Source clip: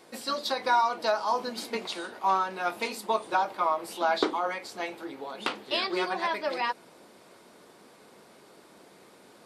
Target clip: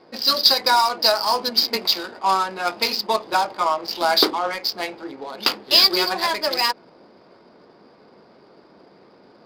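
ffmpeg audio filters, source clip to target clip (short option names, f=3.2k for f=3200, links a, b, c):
-af "lowpass=f=4.9k:t=q:w=13,adynamicsmooth=sensitivity=5.5:basefreq=1.3k,volume=5.5dB"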